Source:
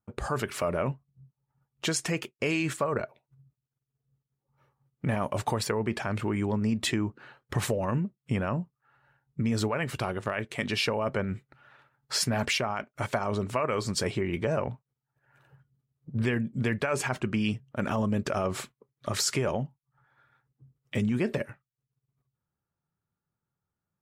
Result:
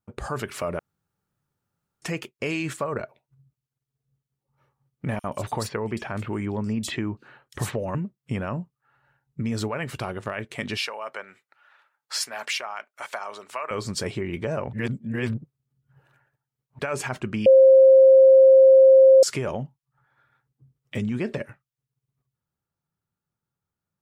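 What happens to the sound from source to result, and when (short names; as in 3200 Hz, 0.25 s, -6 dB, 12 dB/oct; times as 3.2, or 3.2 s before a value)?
0.79–2.02 room tone
5.19–7.95 bands offset in time highs, lows 50 ms, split 3900 Hz
10.77–13.71 HPF 800 Hz
14.73–16.79 reverse
17.46–19.23 bleep 531 Hz -9 dBFS
20.98–21.46 LPF 8700 Hz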